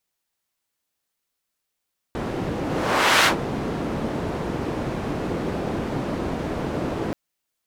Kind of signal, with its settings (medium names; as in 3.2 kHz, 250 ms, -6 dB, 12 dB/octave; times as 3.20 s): whoosh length 4.98 s, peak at 1.10 s, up 0.66 s, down 0.12 s, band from 300 Hz, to 2 kHz, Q 0.71, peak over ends 10.5 dB